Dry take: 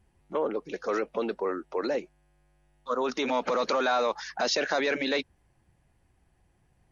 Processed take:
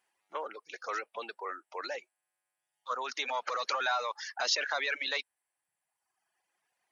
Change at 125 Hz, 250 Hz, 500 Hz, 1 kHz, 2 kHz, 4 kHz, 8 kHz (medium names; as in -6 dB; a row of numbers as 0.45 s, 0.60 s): under -30 dB, -22.5 dB, -12.5 dB, -4.0 dB, -1.5 dB, -1.0 dB, no reading